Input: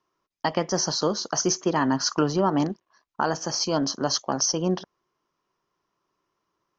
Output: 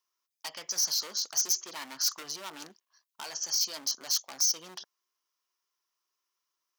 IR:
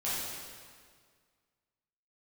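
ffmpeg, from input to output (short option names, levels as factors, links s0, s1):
-af "asoftclip=type=hard:threshold=0.0631,aderivative,volume=1.5"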